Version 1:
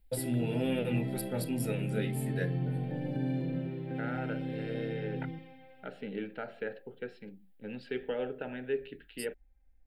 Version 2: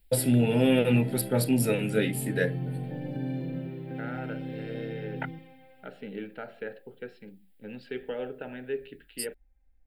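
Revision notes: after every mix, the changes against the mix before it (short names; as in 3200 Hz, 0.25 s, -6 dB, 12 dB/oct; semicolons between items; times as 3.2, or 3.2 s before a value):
first voice +9.5 dB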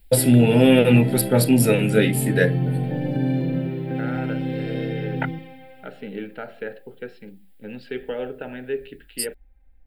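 first voice +8.0 dB; second voice +5.5 dB; background +10.5 dB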